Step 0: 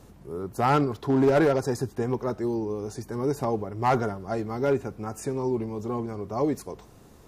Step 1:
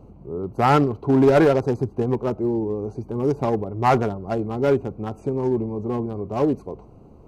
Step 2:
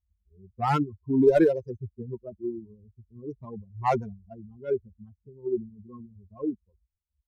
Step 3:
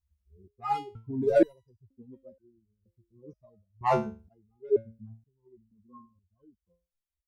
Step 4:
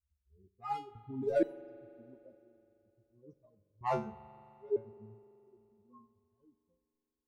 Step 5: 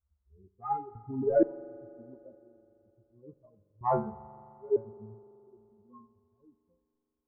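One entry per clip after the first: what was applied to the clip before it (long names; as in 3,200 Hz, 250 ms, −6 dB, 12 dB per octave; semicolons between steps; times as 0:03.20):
adaptive Wiener filter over 25 samples; level +5.5 dB
spectral dynamics exaggerated over time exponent 3; low-pass that shuts in the quiet parts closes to 1,200 Hz, open at −19 dBFS; dynamic equaliser 410 Hz, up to +5 dB, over −33 dBFS, Q 0.98; level −4 dB
step-sequenced resonator 2.1 Hz 73–1,500 Hz; level +8.5 dB
spring reverb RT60 3.1 s, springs 42 ms, chirp 25 ms, DRR 16.5 dB; level −8 dB
inverse Chebyshev low-pass filter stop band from 3,400 Hz, stop band 50 dB; level +5.5 dB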